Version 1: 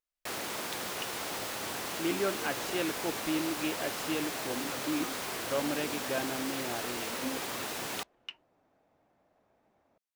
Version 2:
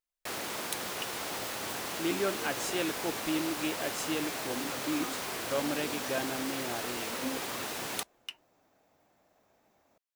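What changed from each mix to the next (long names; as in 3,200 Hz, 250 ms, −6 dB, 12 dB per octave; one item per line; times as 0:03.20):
speech: remove low-pass filter 3,900 Hz 12 dB per octave
second sound: remove head-to-tape spacing loss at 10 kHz 22 dB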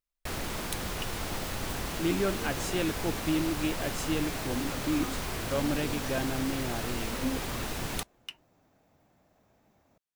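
first sound: remove high-pass filter 120 Hz 12 dB per octave
master: add bass and treble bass +11 dB, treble −1 dB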